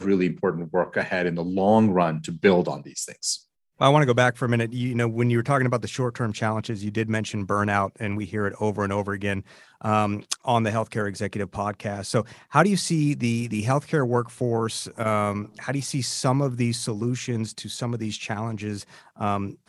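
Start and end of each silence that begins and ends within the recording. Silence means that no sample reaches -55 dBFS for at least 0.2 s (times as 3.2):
3.43–3.78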